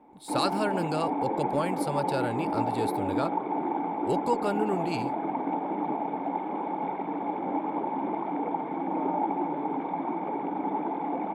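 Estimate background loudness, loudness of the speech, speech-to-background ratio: -30.5 LUFS, -31.5 LUFS, -1.0 dB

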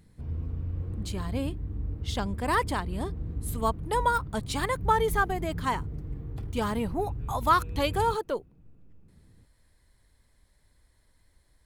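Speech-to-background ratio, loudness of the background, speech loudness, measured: 7.0 dB, -36.5 LUFS, -29.5 LUFS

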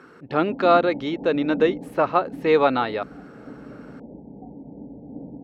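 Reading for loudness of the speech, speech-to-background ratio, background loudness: -21.5 LUFS, 16.5 dB, -38.0 LUFS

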